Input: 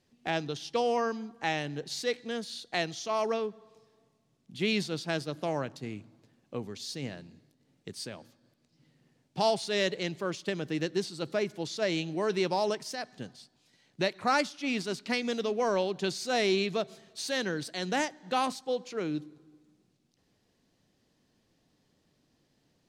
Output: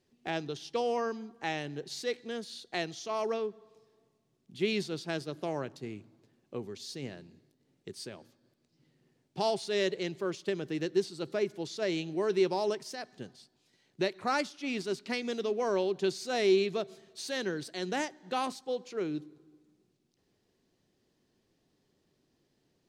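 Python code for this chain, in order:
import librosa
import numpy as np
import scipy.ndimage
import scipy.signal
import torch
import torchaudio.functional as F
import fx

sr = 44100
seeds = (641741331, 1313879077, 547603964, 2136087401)

y = fx.peak_eq(x, sr, hz=380.0, db=8.0, octaves=0.33)
y = y * librosa.db_to_amplitude(-4.0)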